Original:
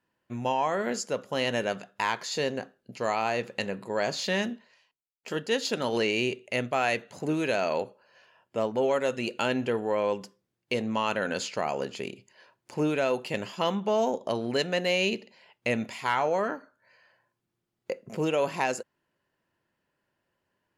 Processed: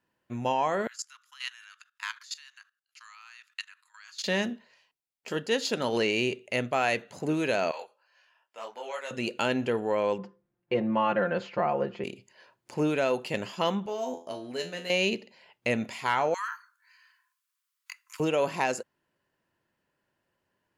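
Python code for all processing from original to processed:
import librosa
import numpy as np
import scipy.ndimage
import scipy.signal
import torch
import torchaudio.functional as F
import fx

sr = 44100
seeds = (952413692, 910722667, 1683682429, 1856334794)

y = fx.chain(x, sr, fx.steep_highpass(hz=1200.0, slope=48),
    fx.peak_eq(hz=2100.0, db=-4.0, octaves=0.86),
    fx.level_steps(step_db=17), at=(0.87, 4.24))
y = fx.chain(y, sr, fx.highpass(hz=950.0, slope=12),
    fx.detune_double(cents=33), at=(7.71, 9.11))
y = fx.chain(y, sr, fx.lowpass(hz=1700.0, slope=12),
    fx.comb(ms=5.7, depth=0.95), at=(10.18, 12.04))
y = fx.chain(y, sr, fx.high_shelf(hz=6100.0, db=7.5),
    fx.comb_fb(f0_hz=84.0, decay_s=0.32, harmonics='all', damping=0.0, mix_pct=90), at=(13.86, 14.9))
y = fx.chain(y, sr, fx.steep_highpass(hz=980.0, slope=96),
    fx.high_shelf(hz=5400.0, db=10.5), at=(16.34, 18.2))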